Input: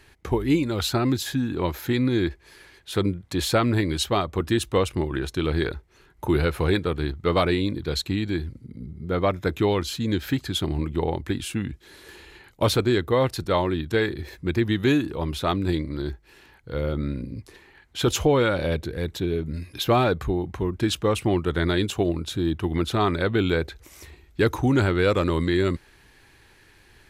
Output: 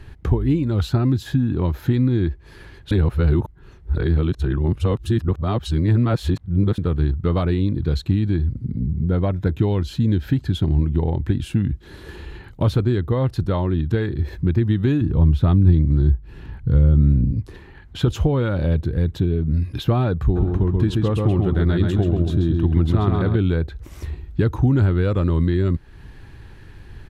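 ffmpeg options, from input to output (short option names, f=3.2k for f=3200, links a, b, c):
-filter_complex "[0:a]asettb=1/sr,asplit=3[a][b][c];[a]atrim=end=8.804[d];[b]atrim=start=8.8:end=11.61,asetpts=PTS-STARTPTS,afade=t=in:d=0.004:c=qsin,afade=t=out:st=2.806:d=0.004:c=qsin,bandreject=f=1.2k:w=8.5[e];[c]atrim=start=11.606[f];[d][e]acrossfade=d=0.004:c1=hsin:c2=qsin[g];[g][f]acrossfade=d=0.004:c1=qsin:c2=hsin,asettb=1/sr,asplit=3[h][i][j];[h]atrim=end=15.014[k];[i]atrim=start=15.01:end=17.32,asetpts=PTS-STARTPTS,afade=t=in:d=0.004:c=qsin,afade=t=out:st=2.306:d=0.004:c=qsin,bass=f=250:g=9,treble=f=4k:g=-3[l];[j]atrim=start=17.316[m];[k][l]acrossfade=d=0.004:c1=hsin:c2=qsin[n];[n][m]acrossfade=d=0.004:c1=qsin:c2=hsin,asplit=3[o][p][q];[o]afade=t=out:st=20.35:d=0.02[r];[p]asplit=2[s][t];[t]adelay=133,lowpass=f=4.4k:p=1,volume=-3dB,asplit=2[u][v];[v]adelay=133,lowpass=f=4.4k:p=1,volume=0.36,asplit=2[w][x];[x]adelay=133,lowpass=f=4.4k:p=1,volume=0.36,asplit=2[y][z];[z]adelay=133,lowpass=f=4.4k:p=1,volume=0.36,asplit=2[aa][ab];[ab]adelay=133,lowpass=f=4.4k:p=1,volume=0.36[ac];[s][u][w][y][aa][ac]amix=inputs=6:normalize=0,afade=t=in:st=20.35:d=0.02,afade=t=out:st=23.35:d=0.02[ad];[q]afade=t=in:st=23.35:d=0.02[ae];[r][ad][ae]amix=inputs=3:normalize=0,asplit=3[af][ag][ah];[af]atrim=end=2.912[ai];[ag]atrim=start=2.908:end=6.782,asetpts=PTS-STARTPTS,areverse[aj];[ah]atrim=start=6.778[ak];[ai][aj]acrossfade=d=0.004:c1=hsin:c2=hsin[al];[al][ak]acrossfade=d=0.004:c1=hsin:c2=hsin,equalizer=f=2.2k:w=3:g=-5.5,acompressor=threshold=-37dB:ratio=2,bass=f=250:g=13,treble=f=4k:g=-10,volume=6dB"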